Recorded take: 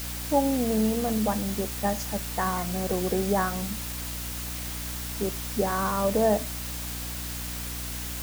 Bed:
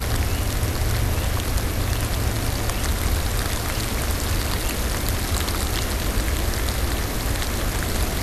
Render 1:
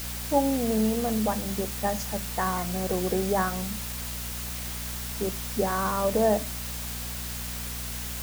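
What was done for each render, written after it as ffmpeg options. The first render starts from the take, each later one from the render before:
-af "bandreject=f=50:t=h:w=6,bandreject=f=100:t=h:w=6,bandreject=f=150:t=h:w=6,bandreject=f=200:t=h:w=6,bandreject=f=250:t=h:w=6,bandreject=f=300:t=h:w=6"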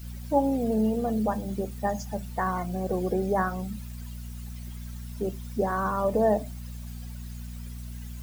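-af "afftdn=nr=17:nf=-35"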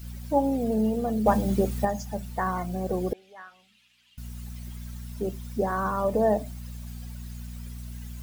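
-filter_complex "[0:a]asettb=1/sr,asplit=3[a][b][c];[a]atrim=end=1.264[d];[b]atrim=start=1.26:end=1.85,asetpts=PTS-STARTPTS,afade=t=in:d=0.004:c=qsin,afade=t=out:st=0.586:d=0.004:c=qsin,acontrast=85[e];[c]atrim=start=1.846[f];[d][e]acrossfade=d=0.004:c1=hsin:c2=qsin[g];[g][f]acrossfade=d=0.004:c1=qsin:c2=hsin,asettb=1/sr,asplit=3[h][i][j];[h]atrim=end=3.134[k];[i]atrim=start=3.13:end=4.18,asetpts=PTS-STARTPTS,afade=t=in:d=0.004:c=qsin,afade=t=out:st=1.046:d=0.004:c=qsin,bandpass=f=2.9k:t=q:w=3.3[l];[j]atrim=start=4.176[m];[k][l]acrossfade=d=0.004:c1=hsin:c2=qsin[n];[n][m]acrossfade=d=0.004:c1=qsin:c2=hsin"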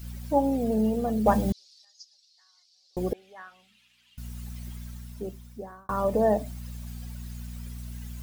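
-filter_complex "[0:a]asettb=1/sr,asplit=3[a][b][c];[a]atrim=end=1.524[d];[b]atrim=start=1.52:end=2.97,asetpts=PTS-STARTPTS,afade=t=in:d=0.004:c=qsin,afade=t=out:st=1.446:d=0.004:c=qsin,asuperpass=centerf=4700:order=4:qfactor=3.1[e];[c]atrim=start=2.966[f];[d][e]acrossfade=d=0.004:c1=hsin:c2=qsin[g];[g][f]acrossfade=d=0.004:c1=qsin:c2=hsin,asplit=2[h][i];[h]atrim=end=5.89,asetpts=PTS-STARTPTS,afade=t=out:st=4.69:d=1.2[j];[i]atrim=start=5.89,asetpts=PTS-STARTPTS,afade=t=in:d=0.004:c=hsin[k];[j][k]concat=n=2:v=0:a=1"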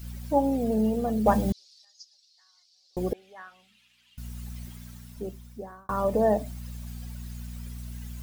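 -filter_complex "[0:a]asettb=1/sr,asplit=3[a][b][c];[a]atrim=end=4.654[d];[b]atrim=start=4.65:end=5.17,asetpts=PTS-STARTPTS,afade=t=in:d=0.004:c=qsin,afade=t=out:st=0.516:d=0.004:c=qsin,lowshelf=f=67:g=-11[e];[c]atrim=start=5.166[f];[d][e]acrossfade=d=0.004:c1=hsin:c2=qsin[g];[g][f]acrossfade=d=0.004:c1=qsin:c2=hsin"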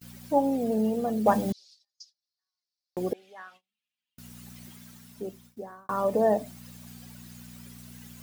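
-af "highpass=180,agate=range=-28dB:threshold=-53dB:ratio=16:detection=peak"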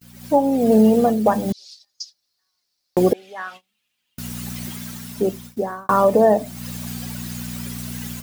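-af "dynaudnorm=f=130:g=3:m=16dB,alimiter=limit=-5dB:level=0:latency=1:release=406"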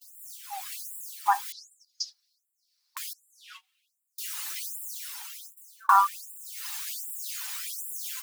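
-af "afftfilt=real='re*gte(b*sr/1024,730*pow(7300/730,0.5+0.5*sin(2*PI*1.3*pts/sr)))':imag='im*gte(b*sr/1024,730*pow(7300/730,0.5+0.5*sin(2*PI*1.3*pts/sr)))':win_size=1024:overlap=0.75"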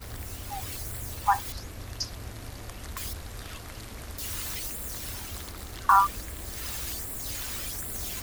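-filter_complex "[1:a]volume=-17dB[a];[0:a][a]amix=inputs=2:normalize=0"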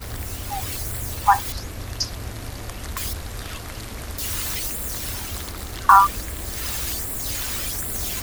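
-af "volume=7.5dB,alimiter=limit=-1dB:level=0:latency=1"

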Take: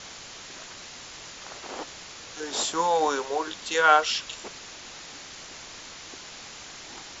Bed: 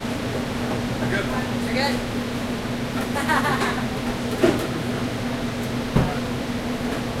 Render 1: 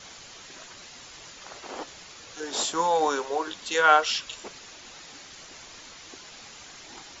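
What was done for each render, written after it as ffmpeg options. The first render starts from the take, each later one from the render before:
-af "afftdn=nr=6:nf=-44"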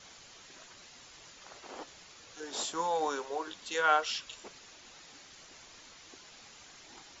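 -af "volume=-8dB"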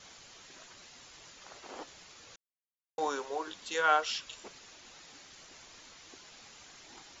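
-filter_complex "[0:a]asplit=3[a][b][c];[a]atrim=end=2.36,asetpts=PTS-STARTPTS,afade=t=out:st=2.356:d=0.004:c=hsin[d];[b]atrim=start=2.36:end=2.98,asetpts=PTS-STARTPTS,volume=0[e];[c]atrim=start=2.98,asetpts=PTS-STARTPTS,afade=t=in:d=0.004:c=hsin[f];[d][e][f]concat=n=3:v=0:a=1"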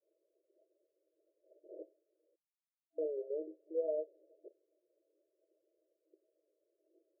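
-af "agate=range=-33dB:threshold=-44dB:ratio=3:detection=peak,afftfilt=real='re*between(b*sr/4096,310,660)':imag='im*between(b*sr/4096,310,660)':win_size=4096:overlap=0.75"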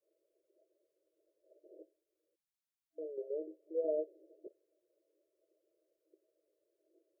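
-filter_complex "[0:a]asettb=1/sr,asplit=3[a][b][c];[a]atrim=end=1.684[d];[b]atrim=start=1.68:end=3.18,asetpts=PTS-STARTPTS,afade=t=in:d=0.004:c=qsin,afade=t=out:st=1.496:d=0.004:c=qsin,equalizer=f=640:t=o:w=1.9:g=-8.5[e];[c]atrim=start=3.176[f];[d][e]acrossfade=d=0.004:c1=hsin:c2=qsin[g];[g][f]acrossfade=d=0.004:c1=qsin:c2=hsin,asettb=1/sr,asplit=3[h][i][j];[h]atrim=end=3.844[k];[i]atrim=start=3.84:end=4.47,asetpts=PTS-STARTPTS,afade=t=in:d=0.004:c=qsin,afade=t=out:st=0.626:d=0.004:c=qsin,equalizer=f=340:w=2.4:g=10[l];[j]atrim=start=4.466[m];[k][l]acrossfade=d=0.004:c1=hsin:c2=qsin[n];[n][m]acrossfade=d=0.004:c1=qsin:c2=hsin"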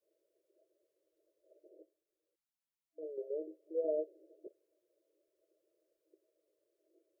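-filter_complex "[0:a]asplit=3[a][b][c];[a]atrim=end=1.692[d];[b]atrim=start=1.688:end=3.032,asetpts=PTS-STARTPTS,volume=-4dB[e];[c]atrim=start=3.028[f];[d][e]acrossfade=d=0.004:c1=hsin:c2=hsin[g];[g][f]acrossfade=d=0.004:c1=hsin:c2=hsin"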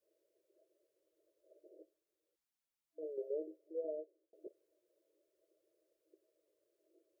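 -filter_complex "[0:a]asplit=2[a][b];[a]atrim=end=4.33,asetpts=PTS-STARTPTS,afade=t=out:st=3.32:d=1.01[c];[b]atrim=start=4.33,asetpts=PTS-STARTPTS,afade=t=in:d=0.004:c=hsin[d];[c][d]concat=n=2:v=0:a=1"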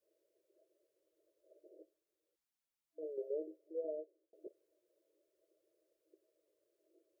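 -af anull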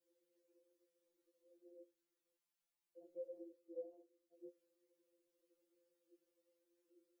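-af "afftfilt=real='re*2.83*eq(mod(b,8),0)':imag='im*2.83*eq(mod(b,8),0)':win_size=2048:overlap=0.75"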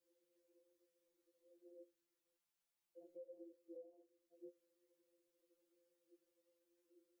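-af "alimiter=level_in=23.5dB:limit=-24dB:level=0:latency=1:release=433,volume=-23.5dB"

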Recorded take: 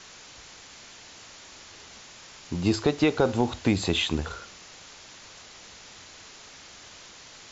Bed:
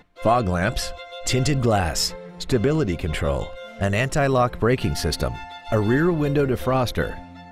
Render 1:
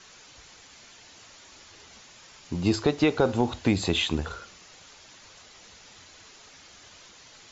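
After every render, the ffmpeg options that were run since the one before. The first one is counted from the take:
-af "afftdn=nr=6:nf=-48"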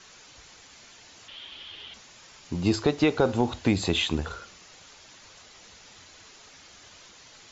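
-filter_complex "[0:a]asettb=1/sr,asplit=3[a][b][c];[a]atrim=end=1.284[d];[b]atrim=start=1.28:end=1.94,asetpts=PTS-STARTPTS,afade=t=in:d=0.004:c=qsin,afade=t=out:st=0.656:d=0.004:c=qsin,lowpass=f=3.2k:t=q:w=8.5[e];[c]atrim=start=1.936[f];[d][e]acrossfade=d=0.004:c1=hsin:c2=qsin[g];[g][f]acrossfade=d=0.004:c1=qsin:c2=hsin"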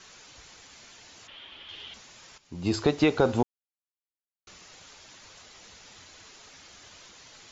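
-filter_complex "[0:a]asettb=1/sr,asplit=3[a][b][c];[a]atrim=end=1.274[d];[b]atrim=start=1.27:end=1.69,asetpts=PTS-STARTPTS,afade=t=in:d=0.004:c=qsin,afade=t=out:st=0.416:d=0.004:c=qsin,bass=f=250:g=-2,treble=f=4k:g=-13[e];[c]atrim=start=1.686[f];[d][e]acrossfade=d=0.004:c1=hsin:c2=qsin[g];[g][f]acrossfade=d=0.004:c1=qsin:c2=hsin,asplit=4[h][i][j][k];[h]atrim=end=2.38,asetpts=PTS-STARTPTS,afade=t=out:st=2.376:d=0.004:c=hsin:silence=0.211349[l];[i]atrim=start=2.38:end=3.43,asetpts=PTS-STARTPTS,afade=t=in:d=0.41:c=qua:silence=0.211349,afade=t=out:st=1.046:d=0.004:c=hsin[m];[j]atrim=start=3.43:end=4.47,asetpts=PTS-STARTPTS,volume=0[n];[k]atrim=start=4.47,asetpts=PTS-STARTPTS,afade=t=in:d=0.004:c=hsin[o];[l][m][n][o]concat=n=4:v=0:a=1"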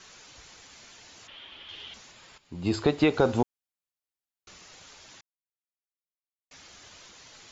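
-filter_complex "[0:a]asettb=1/sr,asplit=3[a][b][c];[a]atrim=end=2.114[d];[b]atrim=start=2.11:end=3.14,asetpts=PTS-STARTPTS,afade=t=in:d=0.004:c=qsin,afade=t=out:st=1.026:d=0.004:c=qsin,equalizer=f=5.9k:w=3.5:g=-9[e];[c]atrim=start=3.136[f];[d][e]acrossfade=d=0.004:c1=hsin:c2=qsin[g];[g][f]acrossfade=d=0.004:c1=qsin:c2=hsin,asplit=3[h][i][j];[h]atrim=end=5.21,asetpts=PTS-STARTPTS,afade=t=out:st=5.206:d=0.004:c=hsin[k];[i]atrim=start=5.21:end=6.51,asetpts=PTS-STARTPTS,volume=0[l];[j]atrim=start=6.51,asetpts=PTS-STARTPTS,afade=t=in:d=0.004:c=hsin[m];[k][l][m]concat=n=3:v=0:a=1"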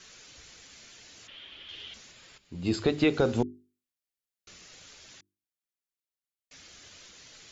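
-af "equalizer=f=910:t=o:w=1:g=-8,bandreject=f=50:t=h:w=6,bandreject=f=100:t=h:w=6,bandreject=f=150:t=h:w=6,bandreject=f=200:t=h:w=6,bandreject=f=250:t=h:w=6,bandreject=f=300:t=h:w=6,bandreject=f=350:t=h:w=6,bandreject=f=400:t=h:w=6"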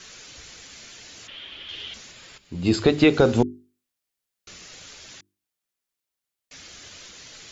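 -af "volume=7.5dB"

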